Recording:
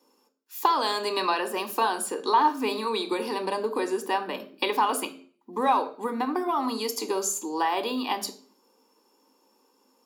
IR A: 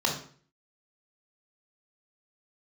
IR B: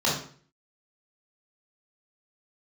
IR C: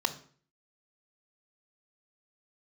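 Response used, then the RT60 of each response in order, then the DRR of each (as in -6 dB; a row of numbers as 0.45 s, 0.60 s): C; 0.45 s, 0.45 s, 0.45 s; 1.0 dB, -5.0 dB, 10.5 dB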